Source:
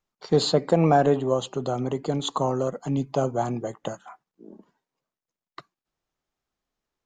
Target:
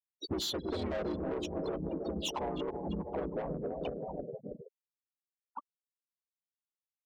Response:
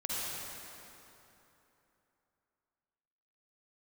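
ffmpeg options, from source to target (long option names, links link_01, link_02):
-filter_complex "[0:a]afreqshift=-71,lowshelf=frequency=63:gain=-6.5,aecho=1:1:320|640|960|1280|1600|1920|2240:0.299|0.176|0.104|0.0613|0.0362|0.0213|0.0126,asplit=2[link_01][link_02];[1:a]atrim=start_sample=2205,adelay=126[link_03];[link_02][link_03]afir=irnorm=-1:irlink=0,volume=-19.5dB[link_04];[link_01][link_04]amix=inputs=2:normalize=0,afftfilt=real='re*gte(hypot(re,im),0.0447)':imag='im*gte(hypot(re,im),0.0447)':win_size=1024:overlap=0.75,bass=frequency=250:gain=-5,treble=frequency=4000:gain=9,asoftclip=type=tanh:threshold=-22dB,asplit=3[link_05][link_06][link_07];[link_06]asetrate=37084,aresample=44100,atempo=1.18921,volume=-1dB[link_08];[link_07]asetrate=55563,aresample=44100,atempo=0.793701,volume=-18dB[link_09];[link_05][link_08][link_09]amix=inputs=3:normalize=0,acompressor=threshold=-34dB:ratio=5"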